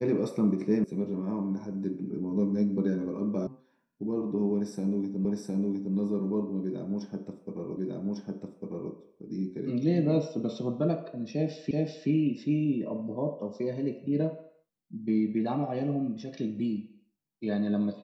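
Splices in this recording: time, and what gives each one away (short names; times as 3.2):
0.84 sound cut off
3.47 sound cut off
5.25 repeat of the last 0.71 s
7.77 repeat of the last 1.15 s
11.71 repeat of the last 0.38 s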